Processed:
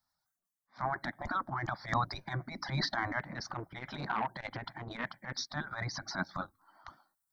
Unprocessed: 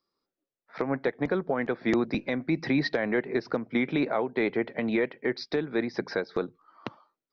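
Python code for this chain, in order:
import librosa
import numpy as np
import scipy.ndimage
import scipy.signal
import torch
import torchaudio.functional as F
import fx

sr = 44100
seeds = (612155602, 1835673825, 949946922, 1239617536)

y = fx.spec_gate(x, sr, threshold_db=-10, keep='weak')
y = fx.dereverb_blind(y, sr, rt60_s=2.0)
y = fx.transient(y, sr, attack_db=-12, sustain_db=9)
y = fx.fixed_phaser(y, sr, hz=1100.0, stages=4)
y = fx.transformer_sat(y, sr, knee_hz=1200.0, at=(3.19, 5.37))
y = y * librosa.db_to_amplitude(8.0)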